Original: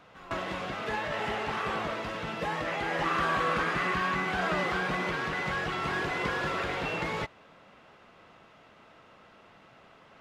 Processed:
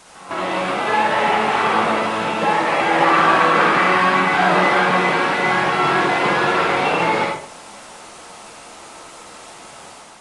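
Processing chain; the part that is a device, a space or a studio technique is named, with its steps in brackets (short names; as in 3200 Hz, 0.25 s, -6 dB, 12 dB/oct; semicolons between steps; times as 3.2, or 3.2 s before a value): filmed off a television (BPF 200–6400 Hz; bell 880 Hz +7 dB 0.44 oct; reverb RT60 0.50 s, pre-delay 48 ms, DRR 0 dB; white noise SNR 22 dB; AGC gain up to 5 dB; gain +4.5 dB; AAC 32 kbps 22050 Hz)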